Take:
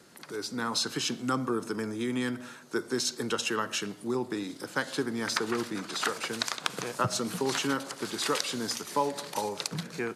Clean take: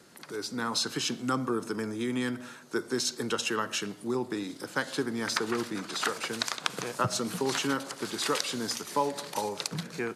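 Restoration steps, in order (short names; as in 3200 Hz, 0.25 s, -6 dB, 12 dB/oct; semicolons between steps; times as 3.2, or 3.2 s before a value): clip repair -7 dBFS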